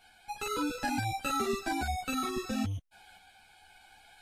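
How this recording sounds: tremolo saw up 0.63 Hz, depth 35%; a shimmering, thickened sound

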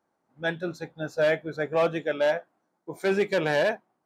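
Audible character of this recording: noise floor -77 dBFS; spectral tilt -3.5 dB/oct

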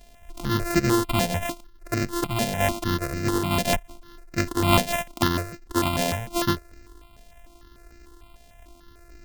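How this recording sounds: a buzz of ramps at a fixed pitch in blocks of 128 samples; notches that jump at a steady rate 6.7 Hz 330–3300 Hz

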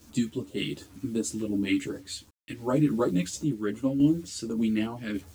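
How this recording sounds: phasing stages 2, 2.7 Hz, lowest notch 710–2000 Hz; a quantiser's noise floor 10-bit, dither none; random-step tremolo; a shimmering, thickened sound

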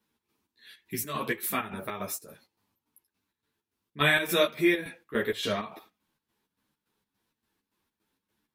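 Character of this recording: chopped level 3.5 Hz, depth 65%, duty 60%; a shimmering, thickened sound

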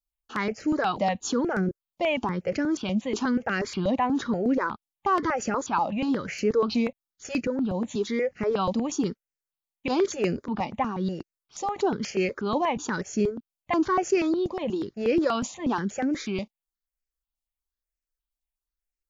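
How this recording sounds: notches that jump at a steady rate 8.3 Hz 410–3600 Hz

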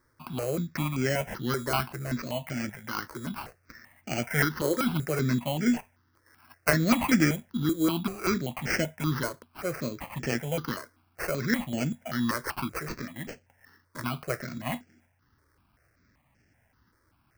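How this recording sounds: aliases and images of a low sample rate 3600 Hz, jitter 0%; notches that jump at a steady rate 5.2 Hz 740–3800 Hz

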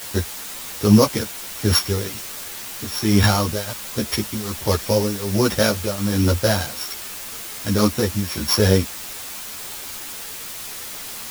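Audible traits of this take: a buzz of ramps at a fixed pitch in blocks of 8 samples; tremolo triangle 1.3 Hz, depth 90%; a quantiser's noise floor 6-bit, dither triangular; a shimmering, thickened sound

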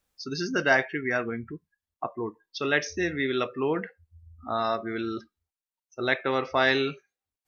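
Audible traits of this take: noise floor -94 dBFS; spectral tilt -2.5 dB/oct

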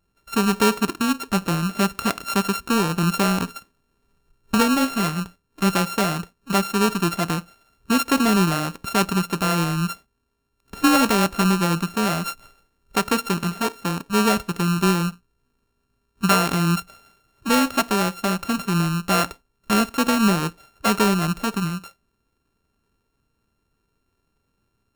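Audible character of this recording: a buzz of ramps at a fixed pitch in blocks of 32 samples

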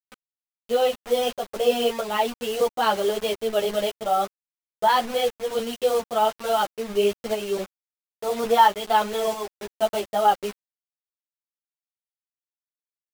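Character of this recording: a quantiser's noise floor 6-bit, dither none; tremolo saw up 1.5 Hz, depth 45%; a shimmering, thickened sound

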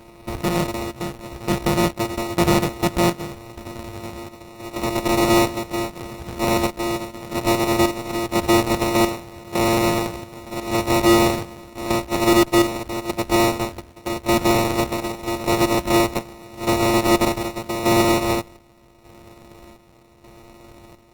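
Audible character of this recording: a buzz of ramps at a fixed pitch in blocks of 128 samples; chopped level 0.84 Hz, depth 60%, duty 60%; aliases and images of a low sample rate 1600 Hz, jitter 0%; Opus

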